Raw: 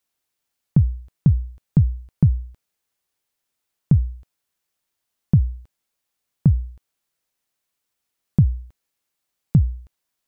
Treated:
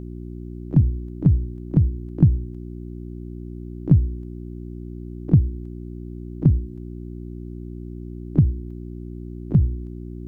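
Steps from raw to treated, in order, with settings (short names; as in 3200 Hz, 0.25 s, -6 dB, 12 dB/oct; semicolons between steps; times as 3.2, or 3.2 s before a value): harmoniser +3 st -16 dB, +12 st -14 dB; buzz 60 Hz, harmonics 6, -34 dBFS -3 dB/oct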